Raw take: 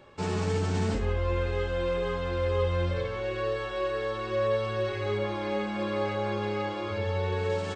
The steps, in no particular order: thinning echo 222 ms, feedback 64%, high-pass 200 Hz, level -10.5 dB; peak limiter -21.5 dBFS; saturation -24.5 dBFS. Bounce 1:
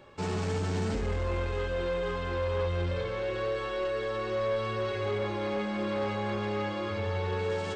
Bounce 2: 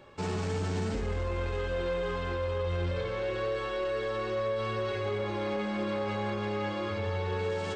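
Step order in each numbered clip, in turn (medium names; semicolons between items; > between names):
thinning echo > saturation > peak limiter; thinning echo > peak limiter > saturation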